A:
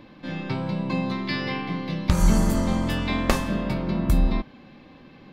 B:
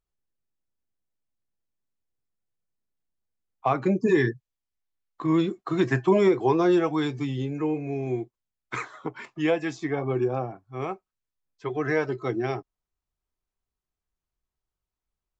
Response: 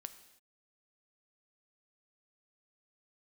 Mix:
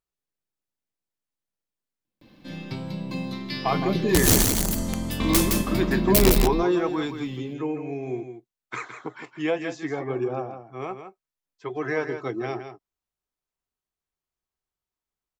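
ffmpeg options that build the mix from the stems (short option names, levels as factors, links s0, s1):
-filter_complex "[0:a]aemphasis=mode=production:type=50fm,aeval=exprs='(mod(4.22*val(0)+1,2)-1)/4.22':c=same,equalizer=f=1200:w=0.68:g=-6,adelay=2050,volume=1.06,asplit=2[s0][s1];[s1]volume=0.596[s2];[1:a]lowshelf=f=110:g=-11,volume=0.891,asplit=3[s3][s4][s5];[s4]volume=0.355[s6];[s5]apad=whole_len=325139[s7];[s0][s7]sidechaingate=range=0.00794:threshold=0.00794:ratio=16:detection=peak[s8];[s2][s6]amix=inputs=2:normalize=0,aecho=0:1:163:1[s9];[s8][s3][s9]amix=inputs=3:normalize=0"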